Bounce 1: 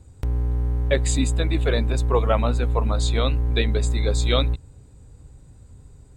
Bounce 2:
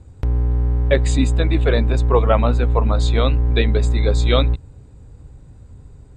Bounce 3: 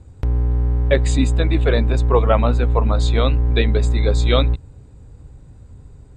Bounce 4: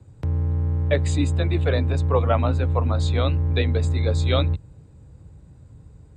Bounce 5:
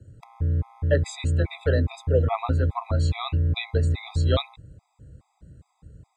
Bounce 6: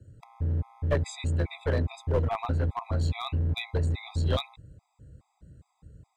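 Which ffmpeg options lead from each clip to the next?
-af "aemphasis=mode=reproduction:type=50fm,volume=4.5dB"
-af anull
-af "afreqshift=24,volume=-5dB"
-af "afftfilt=real='re*gt(sin(2*PI*2.4*pts/sr)*(1-2*mod(floor(b*sr/1024/660),2)),0)':imag='im*gt(sin(2*PI*2.4*pts/sr)*(1-2*mod(floor(b*sr/1024/660),2)),0)':win_size=1024:overlap=0.75"
-af "aeval=exprs='clip(val(0),-1,0.0841)':c=same,volume=-3.5dB"

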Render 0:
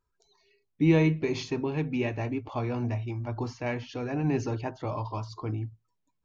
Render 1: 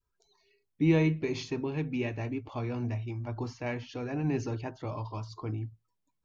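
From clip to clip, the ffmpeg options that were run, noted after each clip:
-af "adynamicequalizer=threshold=0.00562:dfrequency=810:dqfactor=1:tfrequency=810:tqfactor=1:attack=5:release=100:ratio=0.375:range=2:mode=cutabove:tftype=bell,volume=-2.5dB"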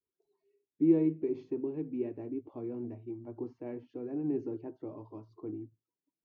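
-af "bandpass=f=340:t=q:w=3:csg=0,volume=2.5dB"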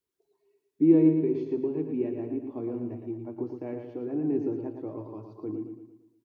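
-af "aecho=1:1:114|228|342|456|570|684:0.473|0.222|0.105|0.0491|0.0231|0.0109,volume=5dB"

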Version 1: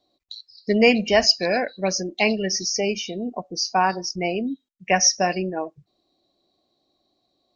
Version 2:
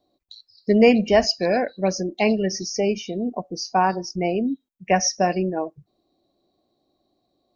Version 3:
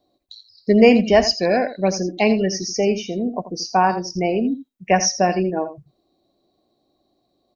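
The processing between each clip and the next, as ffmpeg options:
-af "equalizer=f=4.2k:w=0.31:g=-9.5,volume=3.5dB"
-af "aecho=1:1:83:0.237,volume=2.5dB"

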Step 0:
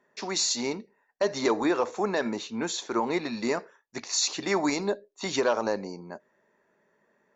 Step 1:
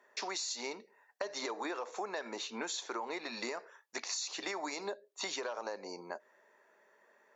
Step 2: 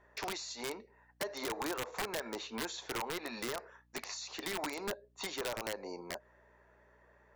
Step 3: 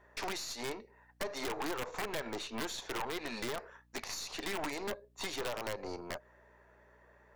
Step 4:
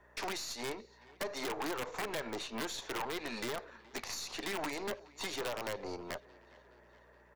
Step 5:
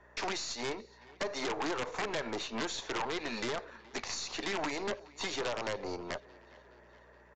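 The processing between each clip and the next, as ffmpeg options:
-af "highpass=500,alimiter=limit=-20.5dB:level=0:latency=1:release=148,acompressor=threshold=-41dB:ratio=5,volume=4dB"
-af "aeval=exprs='val(0)+0.000282*(sin(2*PI*60*n/s)+sin(2*PI*2*60*n/s)/2+sin(2*PI*3*60*n/s)/3+sin(2*PI*4*60*n/s)/4+sin(2*PI*5*60*n/s)/5)':c=same,highshelf=f=3.9k:g=-12,aeval=exprs='(mod(37.6*val(0)+1,2)-1)/37.6':c=same,volume=2dB"
-af "aeval=exprs='(tanh(89.1*val(0)+0.7)-tanh(0.7))/89.1':c=same,volume=6dB"
-filter_complex "[0:a]acrossover=split=110|6000[a][b][c];[a]alimiter=level_in=23.5dB:limit=-24dB:level=0:latency=1,volume=-23.5dB[d];[b]aecho=1:1:421|842|1263|1684:0.0794|0.0461|0.0267|0.0155[e];[d][e][c]amix=inputs=3:normalize=0"
-af "aresample=16000,aresample=44100,volume=3dB"

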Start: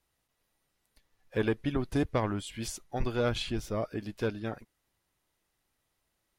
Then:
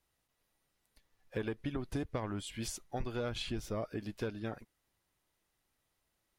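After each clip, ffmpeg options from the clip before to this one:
-af "acompressor=threshold=-31dB:ratio=6,volume=-2dB"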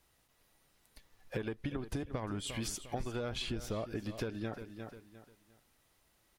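-af "aecho=1:1:352|704|1056:0.178|0.0498|0.0139,acompressor=threshold=-45dB:ratio=4,volume=9dB"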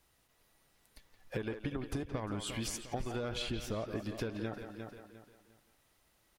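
-filter_complex "[0:a]asplit=2[a][b];[b]adelay=170,highpass=300,lowpass=3.4k,asoftclip=type=hard:threshold=-30.5dB,volume=-7dB[c];[a][c]amix=inputs=2:normalize=0"

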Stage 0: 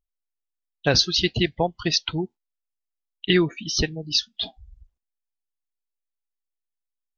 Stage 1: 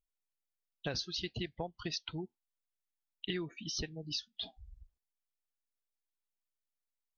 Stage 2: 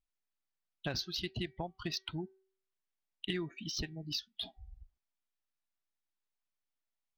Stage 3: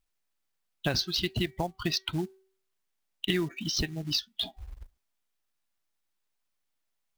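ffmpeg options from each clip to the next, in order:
-af "acompressor=threshold=-33dB:ratio=3,volume=-6dB"
-af "equalizer=f=480:t=o:w=0.23:g=-11,bandreject=f=381.6:t=h:w=4,bandreject=f=763.2:t=h:w=4,bandreject=f=1.1448k:t=h:w=4,bandreject=f=1.5264k:t=h:w=4,bandreject=f=1.908k:t=h:w=4,bandreject=f=2.2896k:t=h:w=4,adynamicsmooth=sensitivity=7:basefreq=5.7k,volume=1.5dB"
-af "acrusher=bits=5:mode=log:mix=0:aa=0.000001,volume=8.5dB"

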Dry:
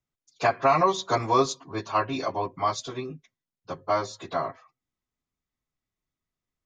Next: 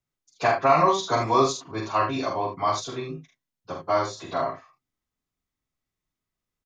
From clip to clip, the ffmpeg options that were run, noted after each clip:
-af "aecho=1:1:45|76:0.631|0.376"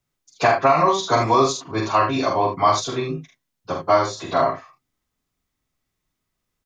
-af "alimiter=limit=-14dB:level=0:latency=1:release=486,volume=8dB"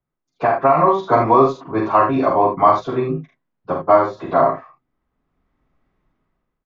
-af "lowpass=1.4k,equalizer=f=100:t=o:w=0.37:g=-9.5,dynaudnorm=f=260:g=5:m=15dB,volume=-1dB"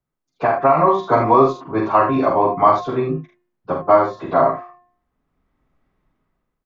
-af "bandreject=f=355.2:t=h:w=4,bandreject=f=710.4:t=h:w=4,bandreject=f=1.0656k:t=h:w=4,bandreject=f=1.4208k:t=h:w=4,bandreject=f=1.776k:t=h:w=4,bandreject=f=2.1312k:t=h:w=4,bandreject=f=2.4864k:t=h:w=4,bandreject=f=2.8416k:t=h:w=4"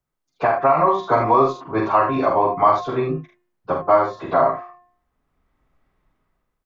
-filter_complex "[0:a]equalizer=f=220:t=o:w=1.9:g=-5,asplit=2[a][b];[b]alimiter=limit=-12dB:level=0:latency=1:release=369,volume=1dB[c];[a][c]amix=inputs=2:normalize=0,volume=-4.5dB"

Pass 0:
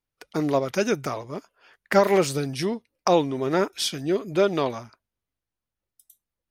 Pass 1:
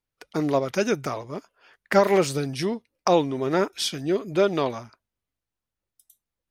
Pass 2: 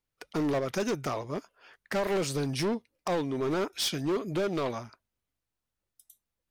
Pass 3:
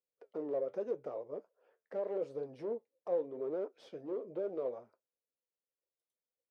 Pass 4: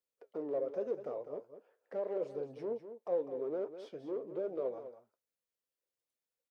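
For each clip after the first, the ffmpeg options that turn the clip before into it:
-af "highshelf=f=11k:g=-4"
-af "alimiter=limit=-14.5dB:level=0:latency=1:release=341,asoftclip=type=hard:threshold=-25dB"
-af "flanger=delay=5.1:depth=7.5:regen=-67:speed=0.82:shape=triangular,bandpass=f=500:t=q:w=5:csg=0,volume=4dB"
-af "aecho=1:1:201:0.282"

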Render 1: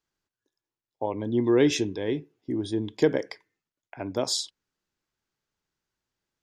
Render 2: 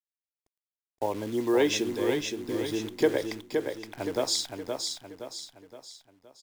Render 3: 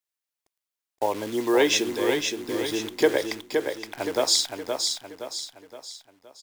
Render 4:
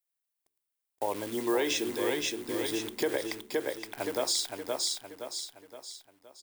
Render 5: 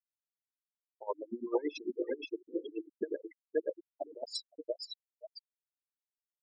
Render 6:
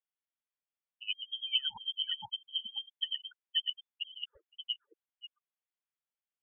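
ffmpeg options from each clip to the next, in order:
-filter_complex "[0:a]acrossover=split=330|890|2000[a][b][c][d];[a]acompressor=threshold=-37dB:ratio=12[e];[e][b][c][d]amix=inputs=4:normalize=0,acrusher=bits=8:dc=4:mix=0:aa=0.000001,aecho=1:1:519|1038|1557|2076|2595:0.562|0.247|0.109|0.0479|0.0211"
-af "lowshelf=f=300:g=-11.5,volume=7dB"
-af "bandreject=f=72.19:t=h:w=4,bandreject=f=144.38:t=h:w=4,bandreject=f=216.57:t=h:w=4,bandreject=f=288.76:t=h:w=4,bandreject=f=360.95:t=h:w=4,bandreject=f=433.14:t=h:w=4,alimiter=limit=-14.5dB:level=0:latency=1:release=89,aexciter=amount=2.4:drive=2.5:freq=8.5k,volume=-4.5dB"
-af "acrusher=bits=4:mode=log:mix=0:aa=0.000001,afftfilt=real='re*gte(hypot(re,im),0.0891)':imag='im*gte(hypot(re,im),0.0891)':win_size=1024:overlap=0.75,aeval=exprs='val(0)*pow(10,-23*(0.5-0.5*cos(2*PI*8.9*n/s))/20)':c=same,volume=1.5dB"
-af "lowpass=f=3k:t=q:w=0.5098,lowpass=f=3k:t=q:w=0.6013,lowpass=f=3k:t=q:w=0.9,lowpass=f=3k:t=q:w=2.563,afreqshift=-3500"

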